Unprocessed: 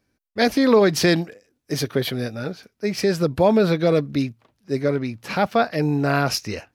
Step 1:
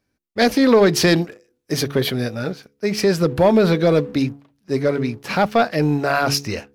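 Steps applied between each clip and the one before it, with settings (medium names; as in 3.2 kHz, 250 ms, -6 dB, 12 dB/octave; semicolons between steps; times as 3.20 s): de-hum 70.55 Hz, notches 7; waveshaping leveller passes 1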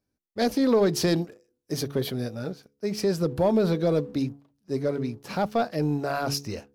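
peaking EQ 2.1 kHz -8 dB 1.6 oct; trim -7 dB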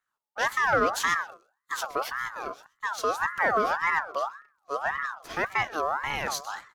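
delay 128 ms -20 dB; ring modulator with a swept carrier 1.2 kHz, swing 30%, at 1.8 Hz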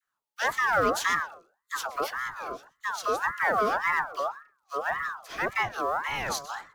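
in parallel at -9.5 dB: short-mantissa float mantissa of 2-bit; on the sum: phase dispersion lows, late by 55 ms, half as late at 860 Hz; trim -3 dB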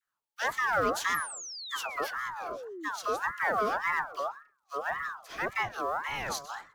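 painted sound fall, 1.14–2.89 s, 280–12000 Hz -38 dBFS; trim -3.5 dB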